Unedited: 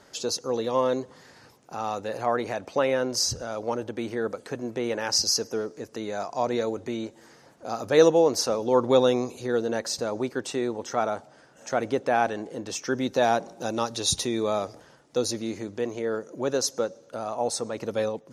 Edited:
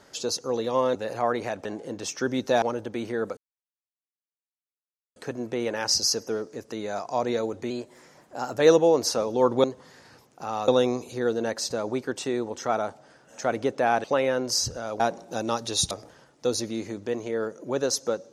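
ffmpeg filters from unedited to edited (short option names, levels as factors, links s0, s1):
-filter_complex "[0:a]asplit=12[s0][s1][s2][s3][s4][s5][s6][s7][s8][s9][s10][s11];[s0]atrim=end=0.952[s12];[s1]atrim=start=1.988:end=2.692[s13];[s2]atrim=start=12.318:end=13.292[s14];[s3]atrim=start=3.648:end=4.4,asetpts=PTS-STARTPTS,afade=t=out:st=0.748:d=0.004:c=hsin,apad=pad_dur=1.79[s15];[s4]atrim=start=4.4:end=6.944,asetpts=PTS-STARTPTS,afade=t=in:d=0.004:c=hsin[s16];[s5]atrim=start=6.94:end=7.92,asetpts=PTS-STARTPTS,asetrate=48069,aresample=44100[s17];[s6]atrim=start=7.916:end=8.962[s18];[s7]atrim=start=0.948:end=1.992[s19];[s8]atrim=start=8.958:end=12.322[s20];[s9]atrim=start=2.688:end=3.652[s21];[s10]atrim=start=13.288:end=14.202[s22];[s11]atrim=start=14.618[s23];[s12][s13]acrossfade=d=0.004:c1=hsin:c2=hsin[s24];[s24][s14]acrossfade=d=0.004:c1=hsin:c2=hsin[s25];[s15][s16]concat=n=2:v=0:a=1[s26];[s25][s26]acrossfade=d=0.004:c1=hsin:c2=hsin[s27];[s27][s17]acrossfade=d=0.004:c1=hsin:c2=hsin[s28];[s28][s18]acrossfade=d=0.004:c1=hsin:c2=hsin[s29];[s29][s19]acrossfade=d=0.004:c1=hsin:c2=hsin[s30];[s30][s20]acrossfade=d=0.004:c1=hsin:c2=hsin[s31];[s31][s21]acrossfade=d=0.004:c1=hsin:c2=hsin[s32];[s32][s22]acrossfade=d=0.004:c1=hsin:c2=hsin[s33];[s33][s23]acrossfade=d=0.004:c1=hsin:c2=hsin"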